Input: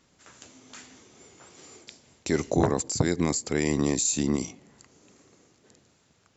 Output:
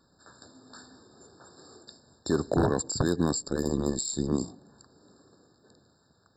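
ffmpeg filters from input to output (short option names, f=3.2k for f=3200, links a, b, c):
-filter_complex "[0:a]aeval=exprs='0.178*(abs(mod(val(0)/0.178+3,4)-2)-1)':c=same,asettb=1/sr,asplit=3[a][b][c];[a]atrim=end=3.424[d];[b]atrim=start=3.42:end=4.32,asetpts=PTS-STARTPTS,afade=t=in:d=0.004:c=qsin,afade=t=out:st=0.896:d=0.004:c=qsin,aeval=exprs='val(0)*sin(2*PI*68*n/s)':c=same[e];[c]atrim=start=4.316[f];[d][e]acrossfade=d=0.004:c1=hsin:c2=qsin[g];[g][f]acrossfade=d=0.004:c1=qsin:c2=hsin,afftfilt=real='re*eq(mod(floor(b*sr/1024/1800),2),0)':imag='im*eq(mod(floor(b*sr/1024/1800),2),0)':win_size=1024:overlap=0.75"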